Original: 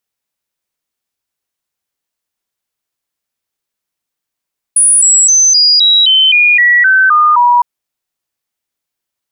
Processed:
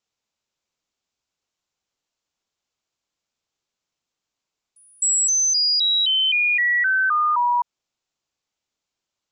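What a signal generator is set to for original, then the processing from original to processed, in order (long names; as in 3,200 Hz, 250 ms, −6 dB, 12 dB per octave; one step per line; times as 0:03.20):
stepped sweep 9,750 Hz down, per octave 3, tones 11, 0.26 s, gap 0.00 s −4.5 dBFS
Butterworth low-pass 7,600 Hz 96 dB per octave
parametric band 1,800 Hz −5 dB 0.48 octaves
brickwall limiter −16 dBFS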